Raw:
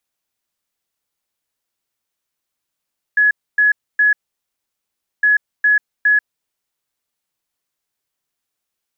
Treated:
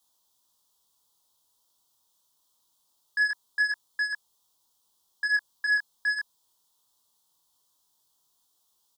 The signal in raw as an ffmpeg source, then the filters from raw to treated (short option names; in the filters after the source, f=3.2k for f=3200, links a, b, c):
-f lavfi -i "aevalsrc='0.335*sin(2*PI*1690*t)*clip(min(mod(mod(t,2.06),0.41),0.14-mod(mod(t,2.06),0.41))/0.005,0,1)*lt(mod(t,2.06),1.23)':d=4.12:s=44100"
-filter_complex "[0:a]firequalizer=gain_entry='entry(670,0);entry(970,10);entry(1500,-7);entry(2300,-17);entry(3300,7)':delay=0.05:min_phase=1,asplit=2[a][b];[b]aeval=exprs='0.119*sin(PI/2*2.24*val(0)/0.119)':c=same,volume=-12dB[c];[a][c]amix=inputs=2:normalize=0,flanger=delay=19:depth=6.6:speed=0.23"